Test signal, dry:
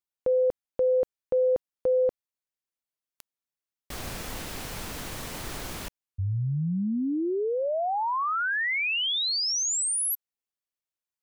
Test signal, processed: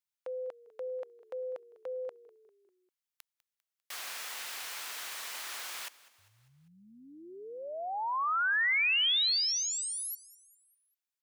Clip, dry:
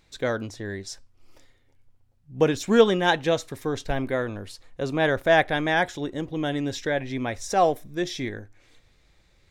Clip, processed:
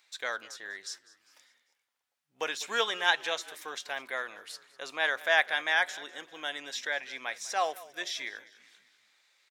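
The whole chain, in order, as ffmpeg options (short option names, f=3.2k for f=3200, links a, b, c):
-filter_complex "[0:a]highpass=1.2k,acrossover=split=5100[a][b];[b]acompressor=threshold=-39dB:ratio=4:attack=1:release=60[c];[a][c]amix=inputs=2:normalize=0,asplit=5[d][e][f][g][h];[e]adelay=199,afreqshift=-36,volume=-20dB[i];[f]adelay=398,afreqshift=-72,volume=-26.2dB[j];[g]adelay=597,afreqshift=-108,volume=-32.4dB[k];[h]adelay=796,afreqshift=-144,volume=-38.6dB[l];[d][i][j][k][l]amix=inputs=5:normalize=0"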